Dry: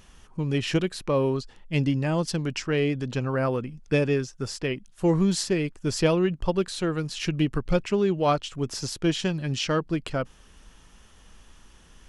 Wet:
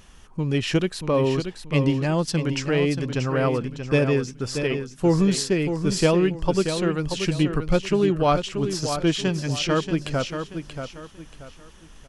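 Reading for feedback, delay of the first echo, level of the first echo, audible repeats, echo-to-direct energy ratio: 31%, 0.632 s, -8.0 dB, 3, -7.5 dB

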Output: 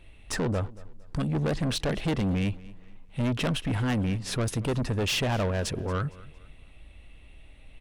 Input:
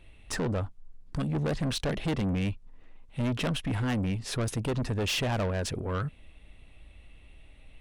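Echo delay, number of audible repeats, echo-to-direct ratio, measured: 0.229 s, 2, -20.0 dB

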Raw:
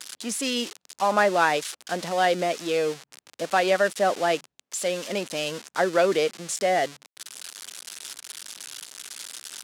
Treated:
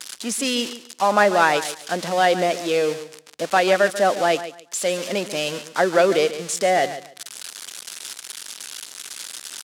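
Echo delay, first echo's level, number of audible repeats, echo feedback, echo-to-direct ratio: 0.141 s, -13.0 dB, 2, 22%, -13.0 dB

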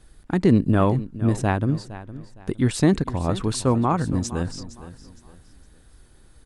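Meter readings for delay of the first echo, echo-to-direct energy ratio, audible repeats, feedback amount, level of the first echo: 0.462 s, -15.0 dB, 2, 31%, -15.5 dB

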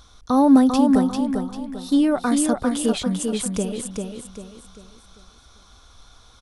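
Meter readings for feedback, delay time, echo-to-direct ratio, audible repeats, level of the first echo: 37%, 0.395 s, -4.0 dB, 4, -4.5 dB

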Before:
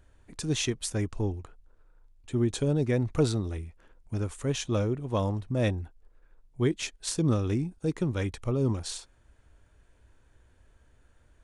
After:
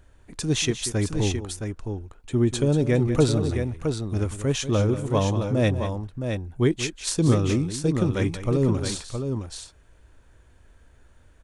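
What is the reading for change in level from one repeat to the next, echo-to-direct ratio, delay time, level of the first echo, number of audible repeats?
no steady repeat, -5.5 dB, 0.187 s, -12.0 dB, 2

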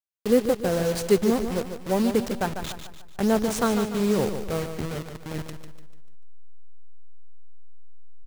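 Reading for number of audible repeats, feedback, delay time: 4, 43%, 0.147 s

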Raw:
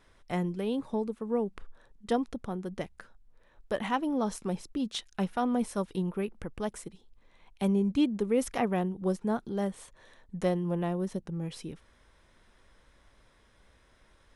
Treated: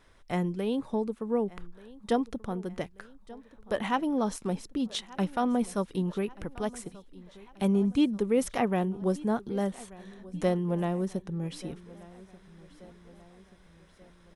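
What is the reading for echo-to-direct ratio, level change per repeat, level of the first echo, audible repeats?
-19.0 dB, -5.5 dB, -20.5 dB, 3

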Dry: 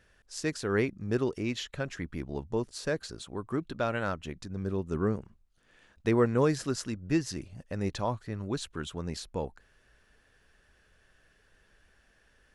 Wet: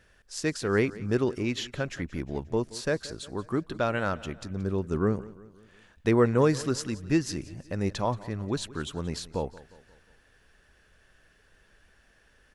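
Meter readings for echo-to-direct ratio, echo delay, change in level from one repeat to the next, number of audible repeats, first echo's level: -18.0 dB, 0.178 s, -6.0 dB, 3, -19.0 dB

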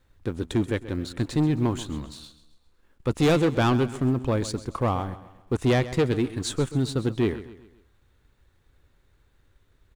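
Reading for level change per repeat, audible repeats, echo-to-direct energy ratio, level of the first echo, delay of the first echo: -7.5 dB, 3, -14.0 dB, -15.0 dB, 0.132 s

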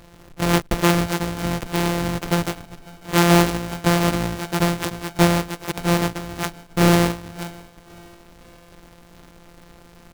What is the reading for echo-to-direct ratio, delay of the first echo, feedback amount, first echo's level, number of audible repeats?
-22.0 dB, 0.547 s, 46%, -23.0 dB, 2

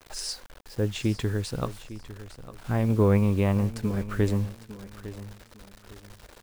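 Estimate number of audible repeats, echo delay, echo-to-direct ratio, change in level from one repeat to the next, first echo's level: 2, 0.854 s, -14.5 dB, -11.0 dB, -15.0 dB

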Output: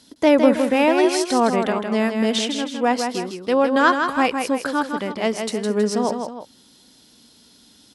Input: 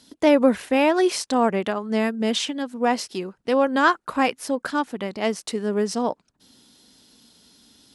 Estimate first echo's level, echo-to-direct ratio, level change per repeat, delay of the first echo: -6.0 dB, -5.0 dB, -7.0 dB, 0.16 s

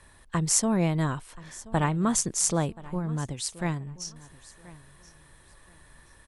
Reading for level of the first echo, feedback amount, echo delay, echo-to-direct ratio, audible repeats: -20.0 dB, 24%, 1.028 s, -20.0 dB, 2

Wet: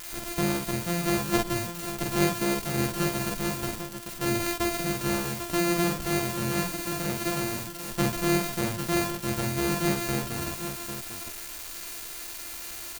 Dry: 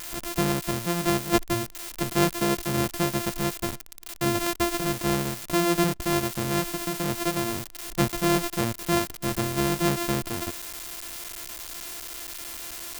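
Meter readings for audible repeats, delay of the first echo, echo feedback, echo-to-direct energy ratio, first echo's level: 4, 46 ms, no steady repeat, -1.5 dB, -3.0 dB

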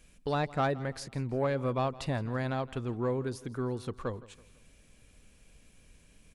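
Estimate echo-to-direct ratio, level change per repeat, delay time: -18.5 dB, -7.5 dB, 0.165 s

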